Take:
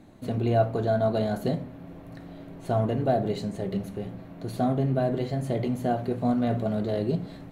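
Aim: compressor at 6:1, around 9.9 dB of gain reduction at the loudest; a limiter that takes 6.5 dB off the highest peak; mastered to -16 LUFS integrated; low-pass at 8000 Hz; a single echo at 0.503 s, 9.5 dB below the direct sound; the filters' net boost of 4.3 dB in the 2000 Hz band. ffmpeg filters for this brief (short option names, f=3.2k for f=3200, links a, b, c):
-af "lowpass=8k,equalizer=f=2k:t=o:g=6,acompressor=threshold=-27dB:ratio=6,alimiter=limit=-23.5dB:level=0:latency=1,aecho=1:1:503:0.335,volume=17.5dB"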